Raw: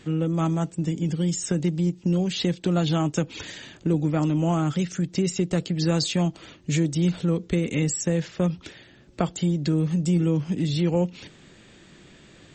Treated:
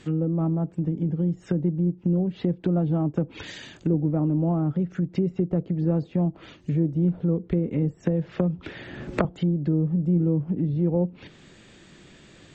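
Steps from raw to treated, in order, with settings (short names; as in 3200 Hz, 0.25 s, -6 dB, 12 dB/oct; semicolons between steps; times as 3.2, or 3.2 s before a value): treble ducked by the level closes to 650 Hz, closed at -21.5 dBFS; 8.03–9.25 three-band squash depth 100%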